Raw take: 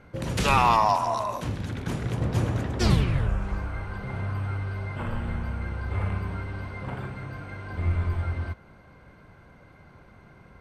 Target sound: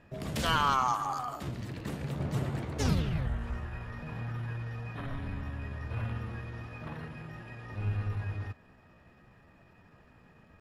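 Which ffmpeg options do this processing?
-af "asetrate=52444,aresample=44100,atempo=0.840896,volume=-7dB"

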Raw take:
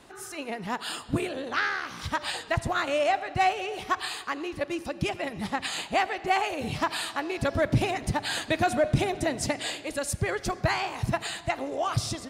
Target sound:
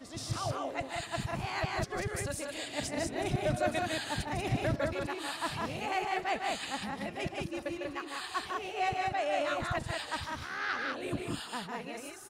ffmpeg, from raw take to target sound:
-af "areverse,aecho=1:1:151.6|189.5:0.562|0.708,volume=-8.5dB"

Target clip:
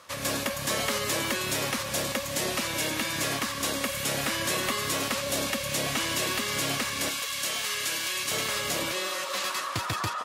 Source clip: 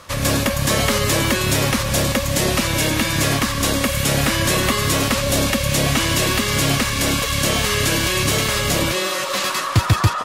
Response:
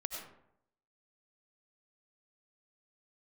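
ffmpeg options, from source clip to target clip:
-af "asetnsamples=n=441:p=0,asendcmd='7.09 highpass f 1400;8.31 highpass f 410',highpass=f=350:p=1,volume=-8.5dB"

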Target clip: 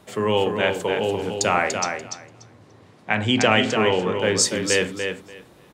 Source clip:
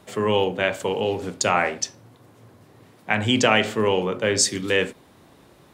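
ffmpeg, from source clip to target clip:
-filter_complex "[0:a]asettb=1/sr,asplit=3[a][b][c];[a]atrim=end=1.814[d];[b]atrim=start=1.81:end=4.16,asetpts=PTS-STARTPTS,afade=t=in:d=0.004:c=qsin,afade=t=out:st=2.346:d=0.004:c=qsin,lowpass=7.3k[e];[c]atrim=start=4.156[f];[d][e]acrossfade=d=0.004:c1=hsin:c2=qsin[g];[g][f]acrossfade=d=0.004:c1=qsin:c2=hsin,aecho=1:1:291|582|873:0.501|0.0802|0.0128"

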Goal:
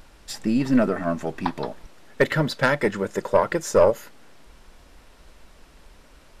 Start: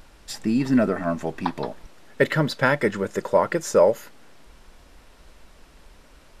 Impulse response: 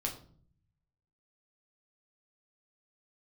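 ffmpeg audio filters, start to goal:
-af "aeval=exprs='0.75*(cos(1*acos(clip(val(0)/0.75,-1,1)))-cos(1*PI/2))+0.0841*(cos(6*acos(clip(val(0)/0.75,-1,1)))-cos(6*PI/2))+0.0266*(cos(8*acos(clip(val(0)/0.75,-1,1)))-cos(8*PI/2))':c=same"

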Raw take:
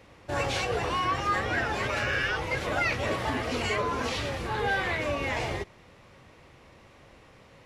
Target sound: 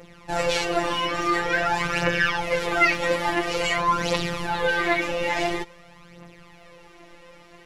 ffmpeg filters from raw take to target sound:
-af "afftfilt=real='hypot(re,im)*cos(PI*b)':imag='0':win_size=1024:overlap=0.75,aphaser=in_gain=1:out_gain=1:delay=3.9:decay=0.57:speed=0.48:type=triangular,volume=7.5dB"

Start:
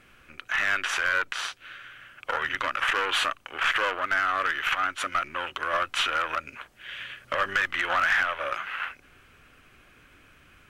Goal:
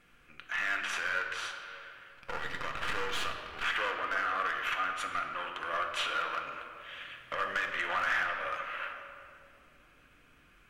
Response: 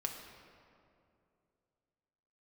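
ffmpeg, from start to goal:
-filter_complex "[0:a]asettb=1/sr,asplit=3[a][b][c];[a]atrim=end=2.104[d];[b]atrim=start=2.1:end=3.63,asetpts=PTS-STARTPTS,afade=t=in:d=0.004:c=qsin,afade=t=out:st=1.526:d=0.004:c=qsin,aeval=exprs='if(lt(val(0),0),0.251*val(0),val(0))':c=same[e];[c]atrim=start=3.626[f];[d][e]acrossfade=d=0.004:c1=hsin:c2=qsin[g];[g][f]acrossfade=d=0.004:c1=qsin:c2=hsin[h];[1:a]atrim=start_sample=2205[i];[h][i]afir=irnorm=-1:irlink=0,volume=-7dB"

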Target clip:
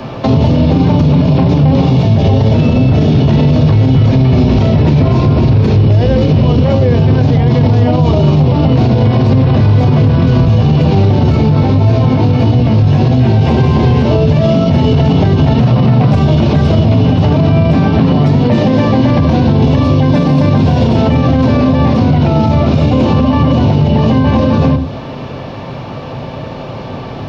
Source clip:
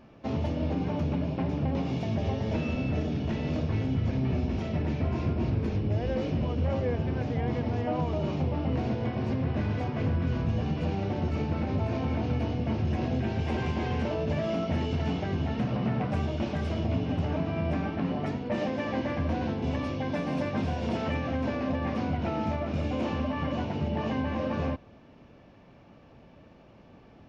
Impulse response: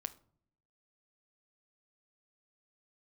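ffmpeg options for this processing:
-filter_complex "[0:a]equalizer=f=125:t=o:w=1:g=8,equalizer=f=500:t=o:w=1:g=5,equalizer=f=1k:t=o:w=1:g=7,equalizer=f=4k:t=o:w=1:g=10,acrossover=split=98|340|1100|3300[a][b][c][d][e];[a]acompressor=threshold=-31dB:ratio=4[f];[b]acompressor=threshold=-26dB:ratio=4[g];[c]acompressor=threshold=-40dB:ratio=4[h];[d]acompressor=threshold=-51dB:ratio=4[i];[e]acompressor=threshold=-54dB:ratio=4[j];[f][g][h][i][j]amix=inputs=5:normalize=0,asettb=1/sr,asplit=3[k][l][m];[k]atrim=end=11.324[n];[l]atrim=start=11.32:end=13.48,asetpts=PTS-STARTPTS,afade=t=in:d=0.004:c=qsin,afade=t=out:st=2.156:d=0.004:c=qsin,flanger=delay=16.5:depth=4:speed=1.6[o];[m]atrim=start=13.476[p];[n][o]acrossfade=d=0.004:c1=hsin:c2=qsin[q];[q][p]acrossfade=d=0.004:c1=qsin:c2=hsin[r];[1:a]atrim=start_sample=2205,atrim=end_sample=6174[s];[r][s]afir=irnorm=-1:irlink=0,alimiter=level_in=27.5dB:limit=-1dB:release=50:level=0:latency=1,volume=-1dB"

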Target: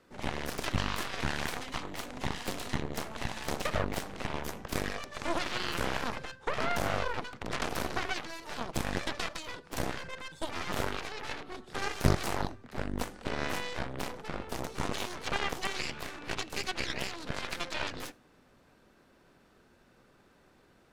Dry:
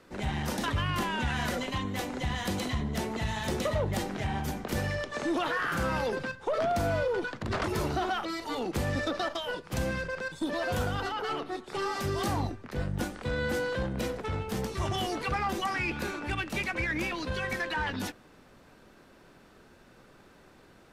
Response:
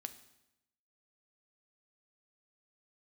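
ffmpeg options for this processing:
-filter_complex "[0:a]asplit=3[a][b][c];[a]afade=t=out:st=11.47:d=0.02[d];[b]lowshelf=f=140:g=10,afade=t=in:st=11.47:d=0.02,afade=t=out:st=12.14:d=0.02[e];[c]afade=t=in:st=12.14:d=0.02[f];[d][e][f]amix=inputs=3:normalize=0,aeval=exprs='0.112*(cos(1*acos(clip(val(0)/0.112,-1,1)))-cos(1*PI/2))+0.0224*(cos(2*acos(clip(val(0)/0.112,-1,1)))-cos(2*PI/2))+0.0447*(cos(3*acos(clip(val(0)/0.112,-1,1)))-cos(3*PI/2))+0.00447*(cos(6*acos(clip(val(0)/0.112,-1,1)))-cos(6*PI/2))+0.00251*(cos(7*acos(clip(val(0)/0.112,-1,1)))-cos(7*PI/2))':c=same,asplit=2[g][h];[1:a]atrim=start_sample=2205,afade=t=out:st=0.15:d=0.01,atrim=end_sample=7056[i];[h][i]afir=irnorm=-1:irlink=0,volume=-5dB[j];[g][j]amix=inputs=2:normalize=0"

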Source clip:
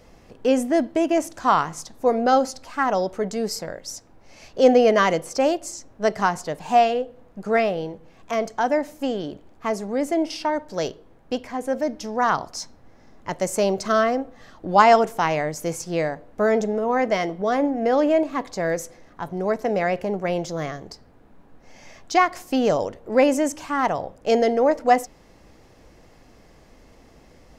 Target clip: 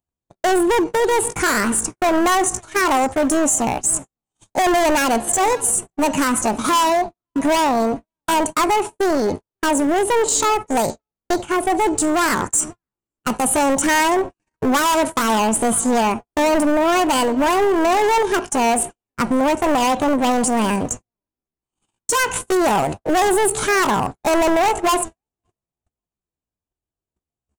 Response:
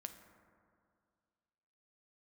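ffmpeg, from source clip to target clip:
-filter_complex "[0:a]highpass=f=52:p=1,bass=f=250:g=6,treble=f=4k:g=-2,aresample=16000,asoftclip=type=tanh:threshold=-19.5dB,aresample=44100,lowshelf=f=79:g=6,acompressor=threshold=-28dB:ratio=4,asoftclip=type=hard:threshold=-28.5dB,acompressor=mode=upward:threshold=-41dB:ratio=2.5,asplit=2[a][b];[b]adelay=552,lowpass=f=1.9k:p=1,volume=-18dB,asplit=2[c][d];[d]adelay=552,lowpass=f=1.9k:p=1,volume=0.32,asplit=2[e][f];[f]adelay=552,lowpass=f=1.9k:p=1,volume=0.32[g];[c][e][g]amix=inputs=3:normalize=0[h];[a][h]amix=inputs=2:normalize=0,asetrate=62367,aresample=44100,atempo=0.707107,aexciter=amount=1.4:drive=9.8:freq=6.3k,agate=range=-60dB:threshold=-37dB:ratio=16:detection=peak,alimiter=level_in=22.5dB:limit=-1dB:release=50:level=0:latency=1,volume=-8dB"

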